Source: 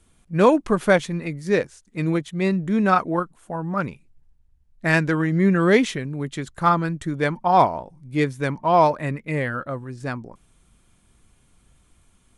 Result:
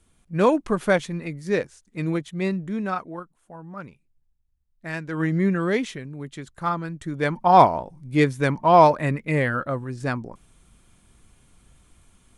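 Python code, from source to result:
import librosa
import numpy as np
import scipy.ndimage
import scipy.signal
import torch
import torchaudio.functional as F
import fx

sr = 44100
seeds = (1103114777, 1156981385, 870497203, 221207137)

y = fx.gain(x, sr, db=fx.line((2.43, -3.0), (3.17, -12.5), (5.07, -12.5), (5.24, -0.5), (5.73, -7.0), (6.89, -7.0), (7.51, 2.5)))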